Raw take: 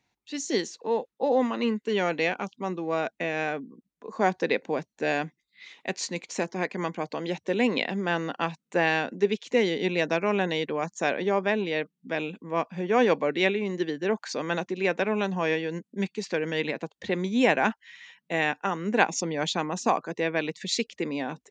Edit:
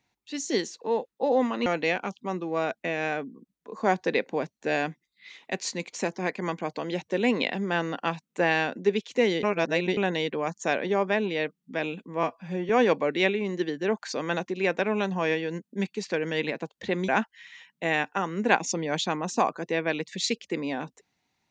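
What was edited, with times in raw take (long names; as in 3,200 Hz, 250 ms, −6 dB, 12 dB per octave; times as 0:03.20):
0:01.66–0:02.02: remove
0:09.79–0:10.33: reverse
0:12.59–0:12.90: time-stretch 1.5×
0:17.29–0:17.57: remove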